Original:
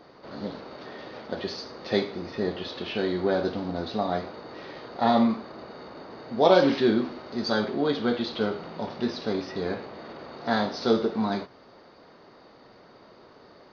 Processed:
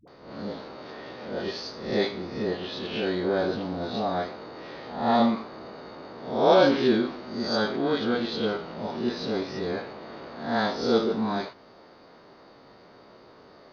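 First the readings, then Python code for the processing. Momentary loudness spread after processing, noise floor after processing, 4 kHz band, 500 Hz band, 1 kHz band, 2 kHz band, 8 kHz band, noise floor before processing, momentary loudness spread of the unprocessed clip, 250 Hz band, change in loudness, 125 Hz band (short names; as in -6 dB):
18 LU, -52 dBFS, +1.0 dB, +0.5 dB, +0.5 dB, +1.0 dB, n/a, -53 dBFS, 19 LU, -0.5 dB, 0.0 dB, -0.5 dB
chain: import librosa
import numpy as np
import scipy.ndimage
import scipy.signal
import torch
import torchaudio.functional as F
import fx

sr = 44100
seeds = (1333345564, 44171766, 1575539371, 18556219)

y = fx.spec_swells(x, sr, rise_s=0.58)
y = fx.dispersion(y, sr, late='highs', ms=77.0, hz=400.0)
y = y * librosa.db_to_amplitude(-1.5)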